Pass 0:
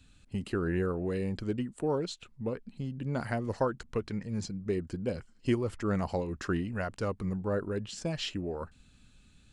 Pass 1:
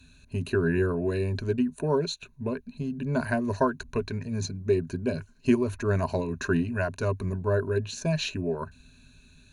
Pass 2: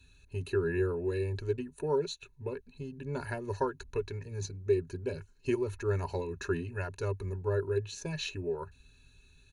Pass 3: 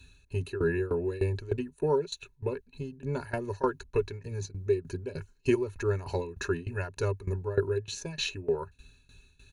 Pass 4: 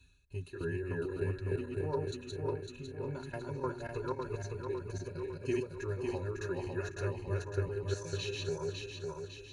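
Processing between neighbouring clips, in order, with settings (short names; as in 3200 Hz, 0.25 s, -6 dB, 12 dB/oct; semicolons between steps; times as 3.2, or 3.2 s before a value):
ripple EQ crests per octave 1.5, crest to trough 14 dB; gain +3 dB
comb 2.3 ms, depth 81%; gain -8 dB
tremolo saw down 3.3 Hz, depth 90%; gain +7 dB
regenerating reverse delay 0.277 s, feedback 70%, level -1 dB; notch comb 220 Hz; gain -8.5 dB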